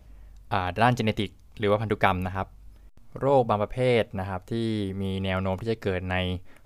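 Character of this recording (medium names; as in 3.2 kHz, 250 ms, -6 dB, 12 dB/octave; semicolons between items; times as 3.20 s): noise floor -51 dBFS; spectral tilt -5.0 dB/octave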